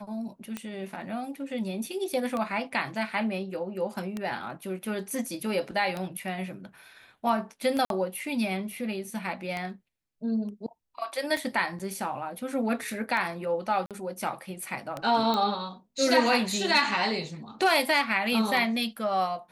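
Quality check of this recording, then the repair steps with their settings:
tick 33 1/3 rpm -18 dBFS
7.85–7.90 s: dropout 52 ms
11.79–11.80 s: dropout 7.4 ms
13.86–13.91 s: dropout 47 ms
15.34 s: pop -15 dBFS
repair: de-click; interpolate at 7.85 s, 52 ms; interpolate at 11.79 s, 7.4 ms; interpolate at 13.86 s, 47 ms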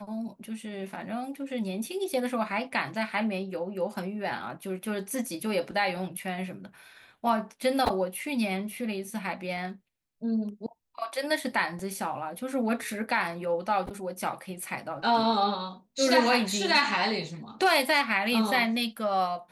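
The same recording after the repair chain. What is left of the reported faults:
nothing left

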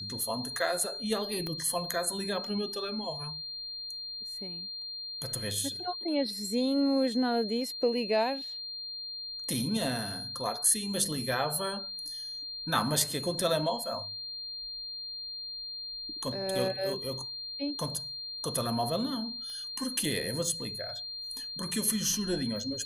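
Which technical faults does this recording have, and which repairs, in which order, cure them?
whine 4.2 kHz -37 dBFS
1.47 s: pop -22 dBFS
19.50 s: pop -33 dBFS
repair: de-click; band-stop 4.2 kHz, Q 30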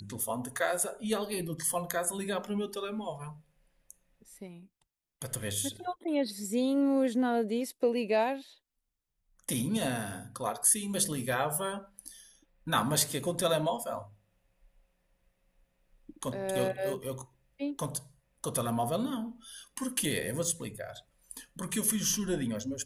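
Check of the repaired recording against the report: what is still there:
1.47 s: pop
19.50 s: pop

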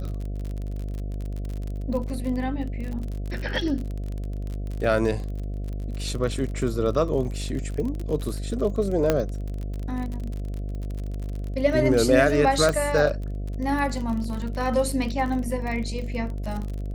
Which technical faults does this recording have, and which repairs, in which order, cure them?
buzz 50 Hz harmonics 14 -30 dBFS
crackle 40 per s -30 dBFS
9.10 s: pop -7 dBFS
12.69 s: pop -11 dBFS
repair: de-click; de-hum 50 Hz, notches 14

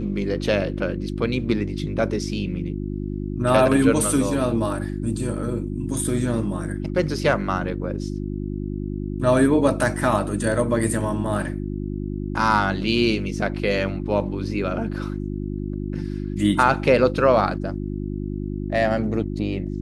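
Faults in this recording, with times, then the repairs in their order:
hum 50 Hz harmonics 7 -28 dBFS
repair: de-hum 50 Hz, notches 7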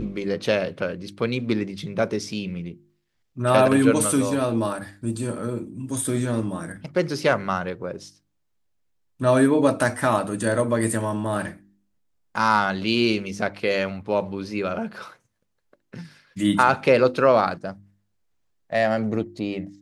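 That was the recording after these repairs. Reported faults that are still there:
nothing left

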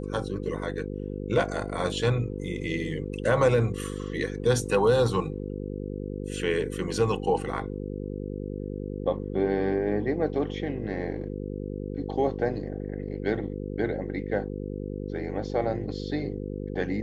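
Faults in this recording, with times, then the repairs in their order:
buzz 50 Hz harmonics 10 -34 dBFS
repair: de-hum 50 Hz, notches 10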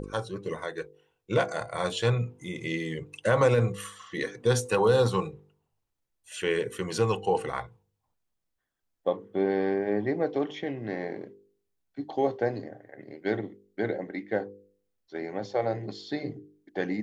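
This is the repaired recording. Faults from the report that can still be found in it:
nothing left

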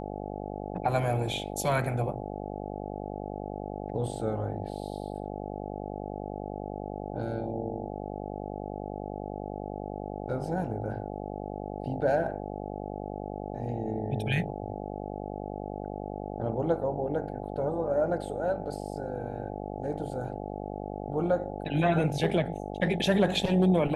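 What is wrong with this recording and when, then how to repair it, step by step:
buzz 50 Hz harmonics 17 -37 dBFS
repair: de-hum 50 Hz, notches 17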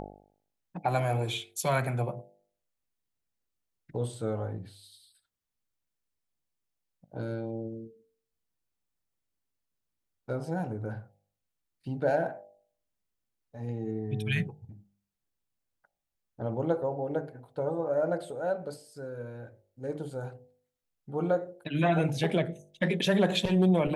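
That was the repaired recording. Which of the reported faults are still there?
nothing left

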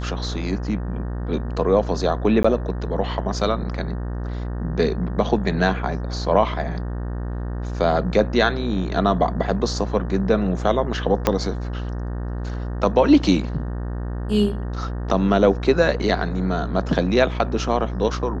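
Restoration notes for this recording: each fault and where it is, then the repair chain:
buzz 60 Hz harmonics 31 -27 dBFS
2.43–2.44 s: dropout 15 ms
11.27 s: pop -3 dBFS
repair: de-click; de-hum 60 Hz, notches 31; interpolate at 2.43 s, 15 ms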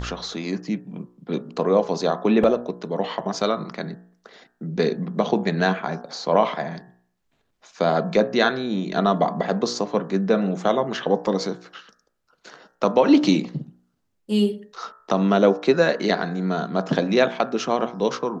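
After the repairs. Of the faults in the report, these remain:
11.27 s: pop

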